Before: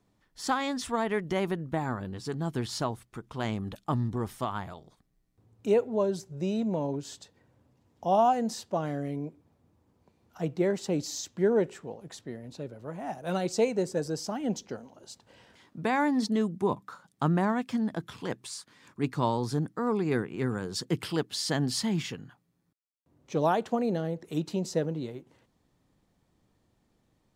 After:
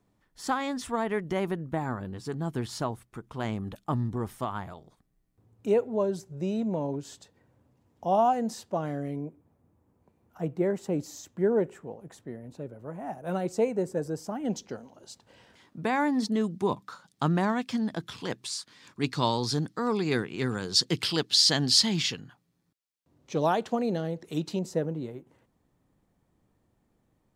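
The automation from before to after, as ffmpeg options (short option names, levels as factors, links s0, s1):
-af "asetnsamples=n=441:p=0,asendcmd='9.21 equalizer g -11.5;14.45 equalizer g 0;16.44 equalizer g 7.5;19 equalizer g 13.5;22.2 equalizer g 3.5;24.59 equalizer g -7.5',equalizer=f=4400:t=o:w=1.6:g=-4"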